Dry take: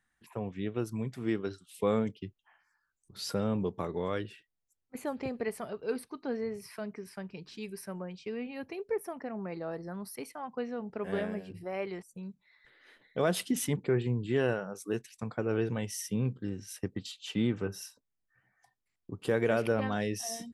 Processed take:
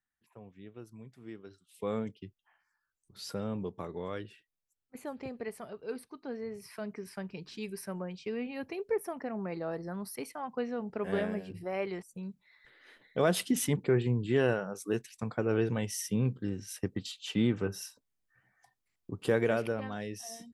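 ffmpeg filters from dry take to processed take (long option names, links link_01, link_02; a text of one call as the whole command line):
ffmpeg -i in.wav -af "volume=1.5dB,afade=type=in:start_time=1.48:duration=0.49:silence=0.334965,afade=type=in:start_time=6.4:duration=0.68:silence=0.473151,afade=type=out:start_time=19.31:duration=0.49:silence=0.398107" out.wav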